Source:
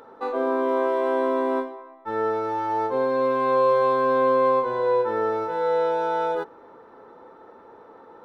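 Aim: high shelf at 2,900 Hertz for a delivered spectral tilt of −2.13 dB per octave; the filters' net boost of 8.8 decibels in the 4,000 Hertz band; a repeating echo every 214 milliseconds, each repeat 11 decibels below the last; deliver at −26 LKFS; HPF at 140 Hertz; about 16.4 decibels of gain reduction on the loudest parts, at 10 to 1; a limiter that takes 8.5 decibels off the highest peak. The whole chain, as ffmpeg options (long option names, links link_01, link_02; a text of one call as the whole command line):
ffmpeg -i in.wav -af "highpass=140,highshelf=frequency=2900:gain=8.5,equalizer=frequency=4000:width_type=o:gain=4,acompressor=threshold=-33dB:ratio=10,alimiter=level_in=8.5dB:limit=-24dB:level=0:latency=1,volume=-8.5dB,aecho=1:1:214|428|642:0.282|0.0789|0.0221,volume=14.5dB" out.wav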